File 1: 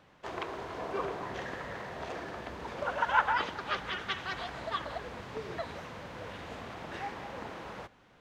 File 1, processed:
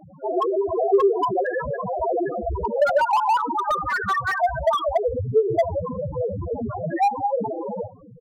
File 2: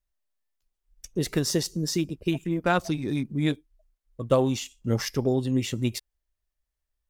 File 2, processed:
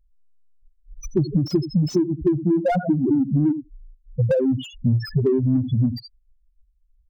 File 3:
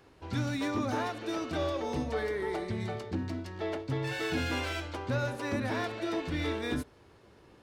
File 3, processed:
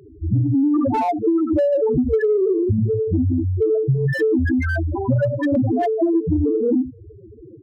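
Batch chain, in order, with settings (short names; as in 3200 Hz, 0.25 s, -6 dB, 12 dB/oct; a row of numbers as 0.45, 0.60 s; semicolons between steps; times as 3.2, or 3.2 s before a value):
echo 78 ms -14.5 dB; loudest bins only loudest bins 2; in parallel at -10 dB: soft clip -32 dBFS; on the sum: compressor 12:1, threshold -37 dBFS; slew limiter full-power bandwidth 8.6 Hz; normalise peaks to -9 dBFS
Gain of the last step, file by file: +24.0, +20.5, +22.0 dB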